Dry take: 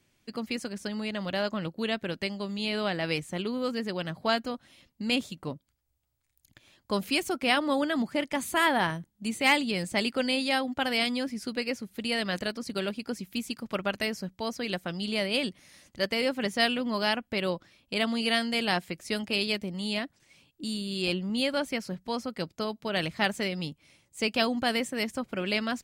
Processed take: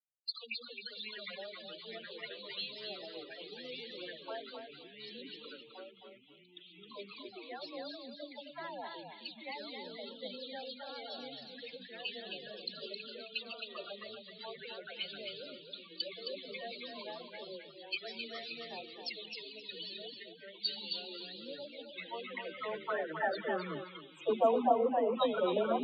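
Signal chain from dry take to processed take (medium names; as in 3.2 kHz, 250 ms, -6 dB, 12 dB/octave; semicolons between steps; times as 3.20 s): resonances exaggerated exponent 1.5; low-pass that closes with the level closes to 550 Hz, closed at -26 dBFS; in parallel at +1 dB: compression 16:1, threshold -41 dBFS, peak gain reduction 17.5 dB; on the sum: bit crusher 7-bit; band-pass sweep 3.9 kHz -> 1 kHz, 21.66–24.01 s; loudest bins only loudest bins 16; phase dispersion lows, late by 108 ms, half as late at 490 Hz; ever faster or slower copies 660 ms, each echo -3 st, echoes 2, each echo -6 dB; on a send: thinning echo 265 ms, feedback 23%, high-pass 320 Hz, level -4.5 dB; on the sum: three bands expanded up and down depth 40%; trim +9 dB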